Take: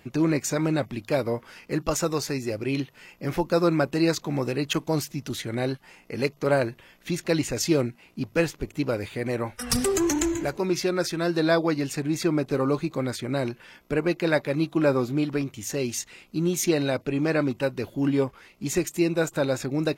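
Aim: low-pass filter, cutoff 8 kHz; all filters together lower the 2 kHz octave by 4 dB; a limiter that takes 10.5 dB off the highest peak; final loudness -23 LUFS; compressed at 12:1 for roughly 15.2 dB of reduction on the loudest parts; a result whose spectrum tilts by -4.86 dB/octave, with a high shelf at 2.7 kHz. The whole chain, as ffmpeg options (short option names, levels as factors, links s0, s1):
-af "lowpass=8000,equalizer=f=2000:t=o:g=-7.5,highshelf=f=2700:g=4.5,acompressor=threshold=0.0224:ratio=12,volume=6.31,alimiter=limit=0.237:level=0:latency=1"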